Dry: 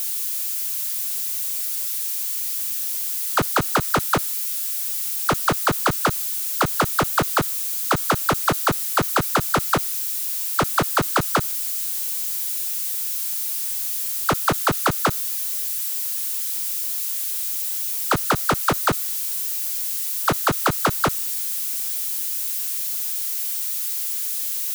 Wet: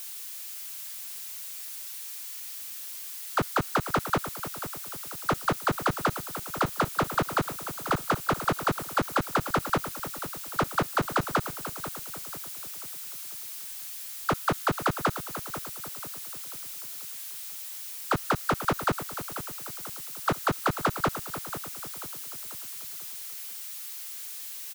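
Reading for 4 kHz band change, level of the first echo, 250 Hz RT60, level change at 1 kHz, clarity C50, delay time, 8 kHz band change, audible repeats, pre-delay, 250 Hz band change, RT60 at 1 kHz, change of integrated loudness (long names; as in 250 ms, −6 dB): −9.0 dB, −11.5 dB, no reverb audible, −5.5 dB, no reverb audible, 489 ms, −12.5 dB, 4, no reverb audible, −5.0 dB, no reverb audible, −9.5 dB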